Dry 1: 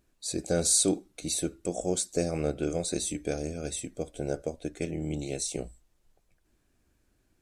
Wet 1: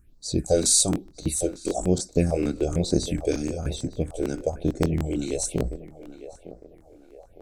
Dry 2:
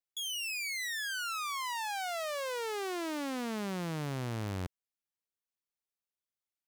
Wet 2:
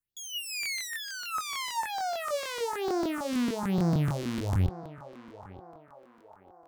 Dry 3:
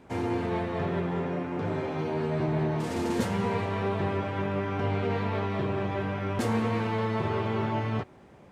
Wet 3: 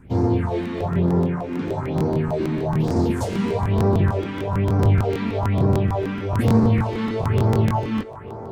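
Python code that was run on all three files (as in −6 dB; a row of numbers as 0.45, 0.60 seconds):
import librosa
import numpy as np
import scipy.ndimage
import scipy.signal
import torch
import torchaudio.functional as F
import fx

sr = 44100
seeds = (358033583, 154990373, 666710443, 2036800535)

y = fx.dynamic_eq(x, sr, hz=880.0, q=0.76, threshold_db=-42.0, ratio=4.0, max_db=5)
y = fx.phaser_stages(y, sr, stages=4, low_hz=100.0, high_hz=2700.0, hz=1.1, feedback_pct=45)
y = fx.low_shelf(y, sr, hz=220.0, db=11.0)
y = fx.echo_banded(y, sr, ms=907, feedback_pct=58, hz=800.0, wet_db=-10)
y = fx.buffer_crackle(y, sr, first_s=0.61, period_s=0.15, block=1024, kind='repeat')
y = y * librosa.db_to_amplitude(3.0)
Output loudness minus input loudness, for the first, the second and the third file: +5.0, +5.0, +8.0 LU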